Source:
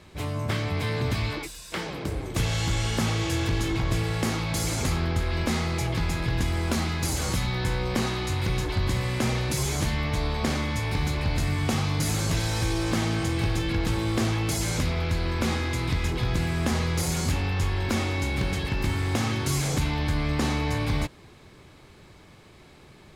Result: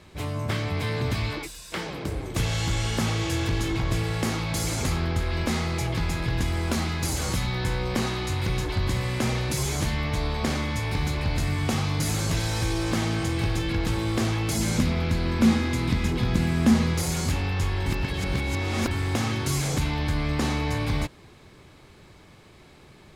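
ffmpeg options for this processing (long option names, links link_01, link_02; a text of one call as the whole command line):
ffmpeg -i in.wav -filter_complex "[0:a]asettb=1/sr,asplit=3[link_01][link_02][link_03];[link_01]atrim=end=14.554[link_04];[link_02]atrim=start=14.55:end=16.94,asetpts=PTS-STARTPTS,afade=type=in:duration=0.004:curve=qsin,afade=type=out:start_time=2.386:duration=0.004:curve=qsin,equalizer=frequency=220:width_type=o:width=0.54:gain=12.5[link_05];[link_03]atrim=start=16.936[link_06];[link_04][link_05]acrossfade=duration=0.004:curve1=hsin:curve2=qsin[link_07];[link_07][link_06]acrossfade=duration=0.004:curve1=qsin:curve2=hsin,asplit=3[link_08][link_09][link_10];[link_08]atrim=end=17.862[link_11];[link_09]atrim=start=17.858:end=18.912,asetpts=PTS-STARTPTS,areverse[link_12];[link_10]atrim=start=18.908[link_13];[link_11][link_12]acrossfade=duration=0.004:curve1=hsin:curve2=hsin[link_14];[link_14][link_13]acrossfade=duration=0.004:curve1=hsin:curve2=hsin" out.wav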